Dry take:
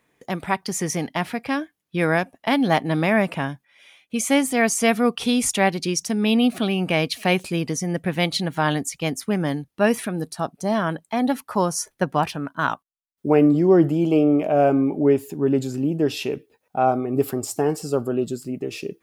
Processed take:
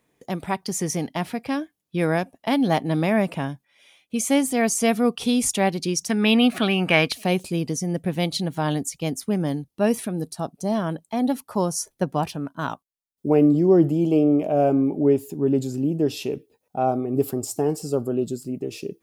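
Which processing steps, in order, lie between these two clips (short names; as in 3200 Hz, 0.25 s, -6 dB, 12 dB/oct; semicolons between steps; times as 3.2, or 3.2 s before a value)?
bell 1700 Hz -6.5 dB 1.8 oct, from 6.09 s +7 dB, from 7.12 s -9.5 dB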